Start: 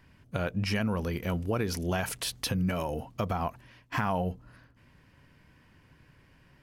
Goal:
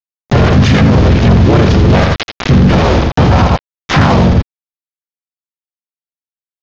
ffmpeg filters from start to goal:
-filter_complex "[0:a]deesser=0.75,highpass=67,aemphasis=mode=reproduction:type=bsi,bandreject=f=50:t=h:w=6,bandreject=f=100:t=h:w=6,bandreject=f=150:t=h:w=6,acompressor=mode=upward:threshold=-33dB:ratio=2.5,aresample=11025,aeval=exprs='val(0)*gte(abs(val(0)),0.0335)':c=same,aresample=44100,asplit=4[a][b][c][d];[b]asetrate=33038,aresample=44100,atempo=1.33484,volume=0dB[e];[c]asetrate=37084,aresample=44100,atempo=1.18921,volume=-15dB[f];[d]asetrate=55563,aresample=44100,atempo=0.793701,volume=-3dB[g];[a][e][f][g]amix=inputs=4:normalize=0,asoftclip=type=tanh:threshold=-17dB,asplit=2[h][i];[i]aecho=0:1:83:0.376[j];[h][j]amix=inputs=2:normalize=0,alimiter=level_in=25dB:limit=-1dB:release=50:level=0:latency=1,volume=-1dB"

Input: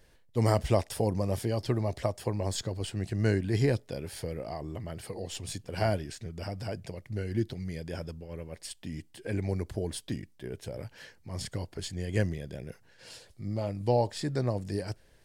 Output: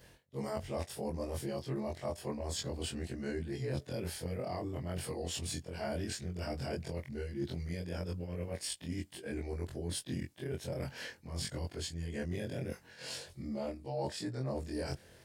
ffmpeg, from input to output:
-af "afftfilt=real='re':imag='-im':win_size=2048:overlap=0.75,areverse,acompressor=threshold=-44dB:ratio=12,areverse,highpass=63,volume=10dB"

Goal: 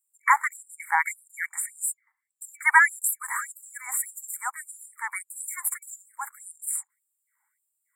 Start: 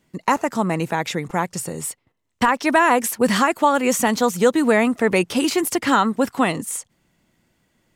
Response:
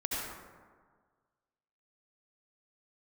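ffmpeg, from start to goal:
-af "asetnsamples=n=441:p=0,asendcmd='3.08 equalizer g -7.5',equalizer=f=2.4k:t=o:w=1.8:g=6.5,afftfilt=real='re*(1-between(b*sr/4096,2300,7100))':imag='im*(1-between(b*sr/4096,2300,7100))':win_size=4096:overlap=0.75,afftfilt=real='re*gte(b*sr/1024,760*pow(4900/760,0.5+0.5*sin(2*PI*1.7*pts/sr)))':imag='im*gte(b*sr/1024,760*pow(4900/760,0.5+0.5*sin(2*PI*1.7*pts/sr)))':win_size=1024:overlap=0.75"

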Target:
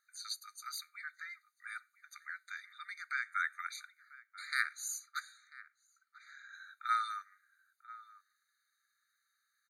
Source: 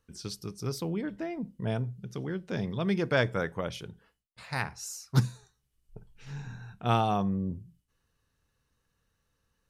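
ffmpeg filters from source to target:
-filter_complex "[0:a]asettb=1/sr,asplit=3[a][b][c];[a]atrim=end=2.494[d];[b]atrim=start=2.49:end=3.36,asetpts=PTS-STARTPTS,afade=t=in:d=0.004:c=qsin,afade=t=out:st=0.866:d=0.004:c=qsin,acompressor=threshold=-32dB:ratio=3[e];[c]atrim=start=3.356[f];[d][e]acrossfade=d=0.004:c1=hsin:c2=qsin[g];[g][f]acrossfade=d=0.004:c1=qsin:c2=hsin,asplit=3[h][i][j];[h]afade=t=out:st=4.98:d=0.02[k];[i]highshelf=f=3.1k:g=-11,afade=t=in:st=4.98:d=0.02,afade=t=out:st=6.52:d=0.02[l];[j]afade=t=in:st=6.52:d=0.02[m];[k][l][m]amix=inputs=3:normalize=0,asplit=2[n][o];[o]adelay=991.3,volume=-16dB,highshelf=f=4k:g=-22.3[p];[n][p]amix=inputs=2:normalize=0,afftfilt=real='re*eq(mod(floor(b*sr/1024/1200),2),1)':imag='im*eq(mod(floor(b*sr/1024/1200),2),1)':win_size=1024:overlap=0.75,volume=3dB"

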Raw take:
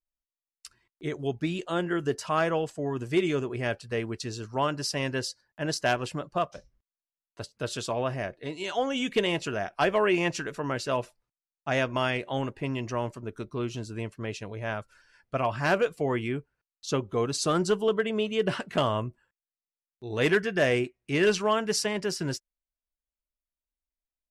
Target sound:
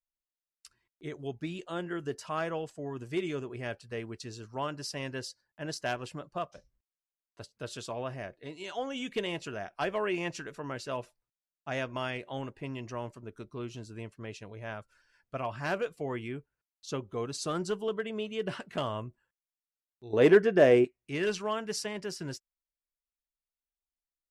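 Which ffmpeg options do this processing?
-filter_complex "[0:a]asettb=1/sr,asplit=3[a][b][c];[a]atrim=end=20.134[d];[b]atrim=start=20.13:end=20.85,asetpts=PTS-STARTPTS,afade=t=in:d=0.004:c=qsin,afade=t=out:st=0.716:d=0.004:c=qsin,equalizer=f=430:w=0.43:g=13[e];[c]atrim=start=20.846[f];[d][e]acrossfade=d=0.004:c1=hsin:c2=qsin[g];[g][f]acrossfade=d=0.004:c1=qsin:c2=hsin,volume=-7.5dB"

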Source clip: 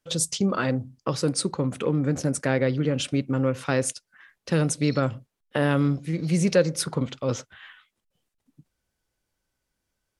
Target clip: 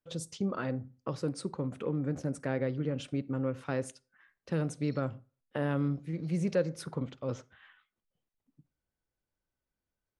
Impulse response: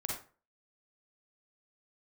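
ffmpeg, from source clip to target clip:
-filter_complex "[0:a]highshelf=f=2.7k:g=-11,asplit=2[a][b];[1:a]atrim=start_sample=2205[c];[b][c]afir=irnorm=-1:irlink=0,volume=-22dB[d];[a][d]amix=inputs=2:normalize=0,volume=-9dB"

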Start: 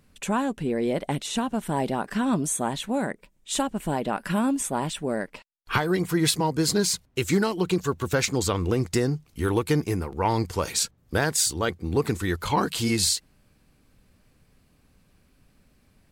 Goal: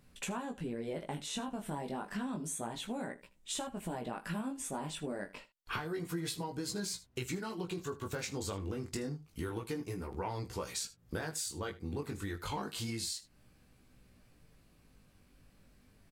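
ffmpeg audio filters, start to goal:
-af "flanger=delay=16:depth=4.5:speed=0.29,acompressor=threshold=-37dB:ratio=5,aecho=1:1:24|78:0.188|0.133"

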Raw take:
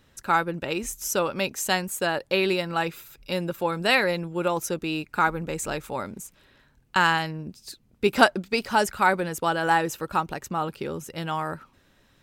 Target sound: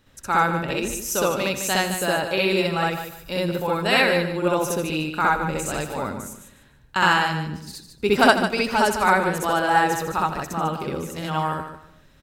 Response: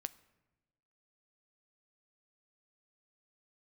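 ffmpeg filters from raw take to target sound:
-filter_complex "[0:a]aecho=1:1:148|296|444:0.335|0.077|0.0177,asplit=2[a][b];[1:a]atrim=start_sample=2205,lowshelf=f=110:g=8.5,adelay=64[c];[b][c]afir=irnorm=-1:irlink=0,volume=5dB[d];[a][d]amix=inputs=2:normalize=0,volume=-1.5dB"

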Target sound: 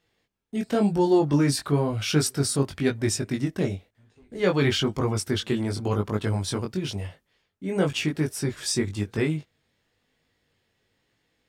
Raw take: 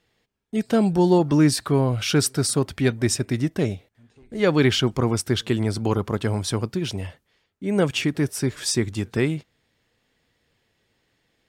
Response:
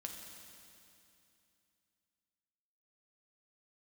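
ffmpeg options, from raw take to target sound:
-af "flanger=delay=19:depth=2.8:speed=0.98"

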